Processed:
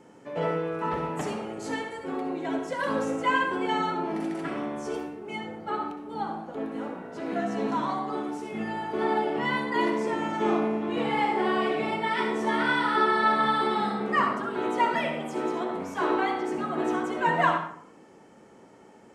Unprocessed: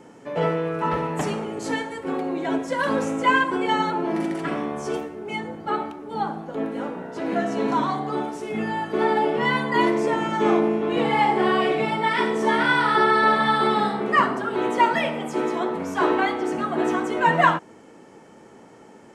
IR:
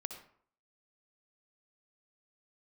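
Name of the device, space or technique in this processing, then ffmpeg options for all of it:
bathroom: -filter_complex "[1:a]atrim=start_sample=2205[a];[0:a][a]afir=irnorm=-1:irlink=0,volume=-3.5dB"

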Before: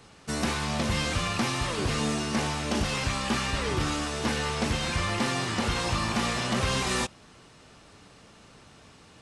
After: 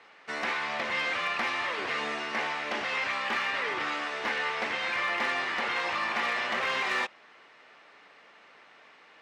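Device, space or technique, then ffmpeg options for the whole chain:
megaphone: -af "highpass=550,lowpass=3k,equalizer=f=2k:t=o:w=0.56:g=7.5,asoftclip=type=hard:threshold=-21.5dB"

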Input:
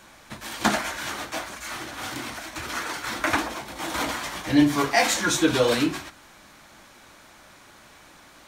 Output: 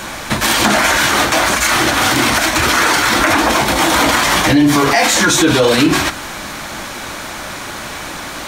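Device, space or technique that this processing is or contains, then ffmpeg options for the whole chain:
loud club master: -af "acompressor=threshold=-26dB:ratio=2.5,asoftclip=type=hard:threshold=-16.5dB,alimiter=level_in=26.5dB:limit=-1dB:release=50:level=0:latency=1,volume=-2.5dB"

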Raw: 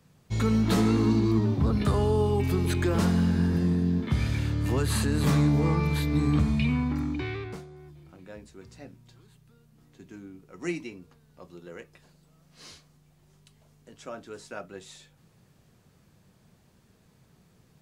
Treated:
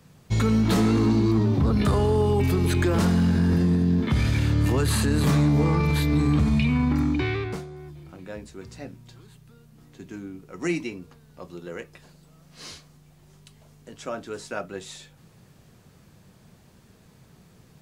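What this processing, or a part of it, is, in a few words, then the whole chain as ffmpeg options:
clipper into limiter: -af "asoftclip=type=hard:threshold=-17dB,alimiter=limit=-21.5dB:level=0:latency=1:release=21,volume=7dB"

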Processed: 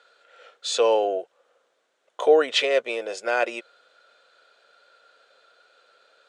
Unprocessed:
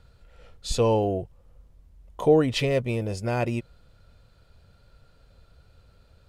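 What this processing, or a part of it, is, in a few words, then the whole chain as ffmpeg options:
phone speaker on a table: -af "highpass=f=460:w=0.5412,highpass=f=460:w=1.3066,equalizer=f=930:t=q:w=4:g=-5,equalizer=f=1.5k:t=q:w=4:g=7,equalizer=f=3.5k:t=q:w=4:g=4,equalizer=f=5k:t=q:w=4:g=-4,lowpass=f=8k:w=0.5412,lowpass=f=8k:w=1.3066,volume=5.5dB"

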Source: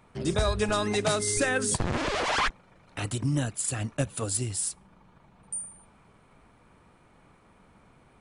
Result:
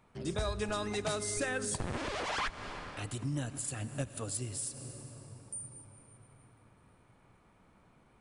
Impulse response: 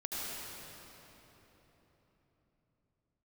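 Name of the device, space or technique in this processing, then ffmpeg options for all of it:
ducked reverb: -filter_complex "[0:a]asplit=3[a][b][c];[1:a]atrim=start_sample=2205[d];[b][d]afir=irnorm=-1:irlink=0[e];[c]apad=whole_len=361836[f];[e][f]sidechaincompress=threshold=-34dB:ratio=8:attack=9.4:release=213,volume=-8dB[g];[a][g]amix=inputs=2:normalize=0,volume=-9dB"

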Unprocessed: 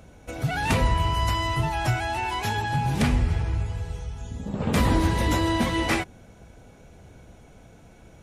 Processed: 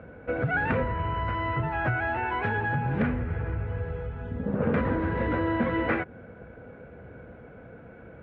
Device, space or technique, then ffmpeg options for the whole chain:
bass amplifier: -af "acompressor=threshold=-27dB:ratio=4,highpass=72,equalizer=f=240:t=q:w=4:g=3,equalizer=f=490:t=q:w=4:g=9,equalizer=f=850:t=q:w=4:g=-3,equalizer=f=1.5k:t=q:w=4:g=8,lowpass=f=2.2k:w=0.5412,lowpass=f=2.2k:w=1.3066,volume=2.5dB"

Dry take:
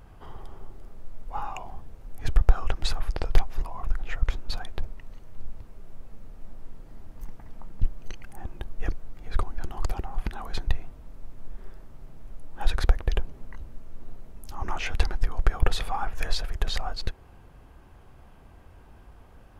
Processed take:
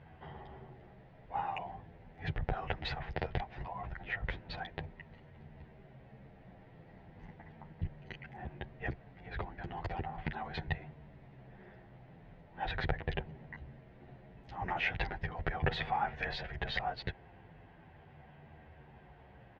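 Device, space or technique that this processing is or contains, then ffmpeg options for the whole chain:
barber-pole flanger into a guitar amplifier: -filter_complex "[0:a]asplit=2[a][b];[b]adelay=10.2,afreqshift=-0.38[c];[a][c]amix=inputs=2:normalize=1,asoftclip=type=tanh:threshold=-14dB,highpass=89,equalizer=f=150:t=q:w=4:g=7,equalizer=f=280:t=q:w=4:g=-4,equalizer=f=760:t=q:w=4:g=4,equalizer=f=1.2k:t=q:w=4:g=-9,equalizer=f=1.9k:t=q:w=4:g=8,lowpass=f=3.5k:w=0.5412,lowpass=f=3.5k:w=1.3066,volume=1dB"

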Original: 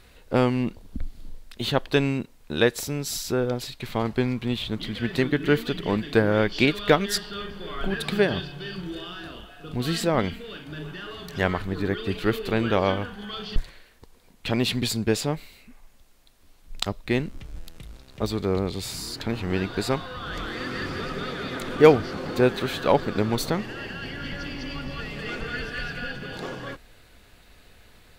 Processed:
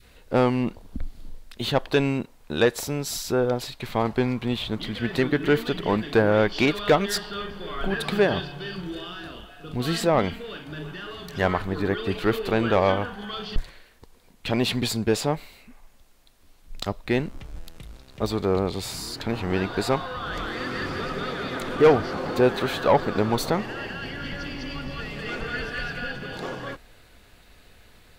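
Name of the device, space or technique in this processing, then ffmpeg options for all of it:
saturation between pre-emphasis and de-emphasis: -af "adynamicequalizer=threshold=0.0141:dfrequency=820:dqfactor=0.81:tfrequency=820:tqfactor=0.81:attack=5:release=100:ratio=0.375:range=3.5:mode=boostabove:tftype=bell,highshelf=f=3.5k:g=11,asoftclip=type=tanh:threshold=-9.5dB,highshelf=f=3.5k:g=-11"

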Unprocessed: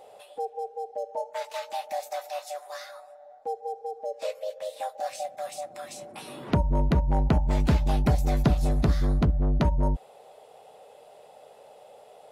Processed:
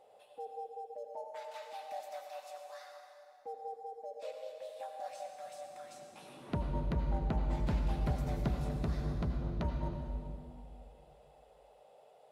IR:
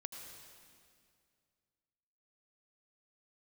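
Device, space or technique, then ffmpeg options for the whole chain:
swimming-pool hall: -filter_complex "[1:a]atrim=start_sample=2205[a];[0:a][a]afir=irnorm=-1:irlink=0,highshelf=f=4.8k:g=-5,volume=-7.5dB"

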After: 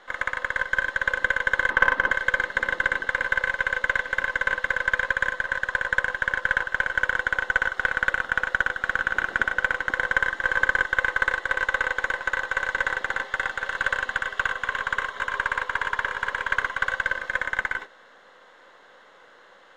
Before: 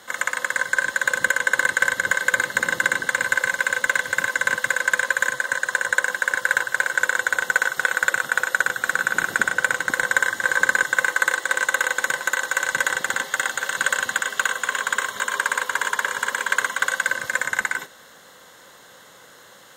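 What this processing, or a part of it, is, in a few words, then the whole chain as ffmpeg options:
crystal radio: -filter_complex "[0:a]asettb=1/sr,asplit=3[a][b][c];[a]atrim=end=1.704[d];[b]atrim=start=1.7:end=2.11,asetpts=PTS-STARTPTS,afade=t=in:d=0.004:c=qsin,afade=t=out:st=0.406:d=0.004:c=qsin,equalizer=f=250:t=o:w=1:g=11,equalizer=f=1k:t=o:w=1:g=9,equalizer=f=8k:t=o:w=1:g=-12[e];[c]atrim=start=2.106[f];[d][e]acrossfade=d=0.004:c1=hsin:c2=qsin[g];[g][f]acrossfade=d=0.004:c1=qsin:c2=hsin,highpass=320,lowpass=2.6k,aeval=exprs='if(lt(val(0),0),0.708*val(0),val(0))':c=same,volume=-1dB"

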